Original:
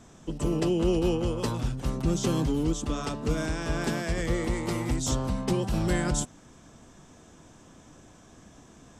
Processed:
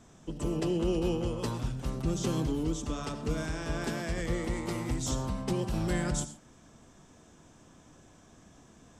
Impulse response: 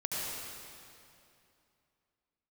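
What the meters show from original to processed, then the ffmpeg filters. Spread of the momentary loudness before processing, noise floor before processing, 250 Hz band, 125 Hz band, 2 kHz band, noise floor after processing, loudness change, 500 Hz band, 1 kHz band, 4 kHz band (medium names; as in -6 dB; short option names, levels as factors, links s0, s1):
6 LU, -54 dBFS, -4.0 dB, -4.0 dB, -4.0 dB, -58 dBFS, -4.0 dB, -4.5 dB, -4.0 dB, -4.0 dB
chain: -filter_complex "[0:a]asplit=2[s0][s1];[1:a]atrim=start_sample=2205,atrim=end_sample=6174[s2];[s1][s2]afir=irnorm=-1:irlink=0,volume=0.335[s3];[s0][s3]amix=inputs=2:normalize=0,volume=0.473"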